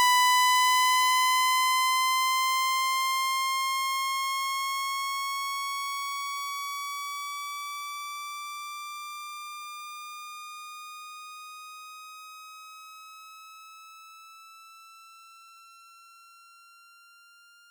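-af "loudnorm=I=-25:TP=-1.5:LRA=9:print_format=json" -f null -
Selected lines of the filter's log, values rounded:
"input_i" : "-26.4",
"input_tp" : "-14.4",
"input_lra" : "24.1",
"input_thresh" : "-39.5",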